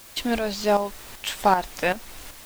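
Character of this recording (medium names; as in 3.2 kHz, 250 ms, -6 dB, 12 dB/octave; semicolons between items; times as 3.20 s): tremolo saw up 2.6 Hz, depth 65%; a quantiser's noise floor 8-bit, dither triangular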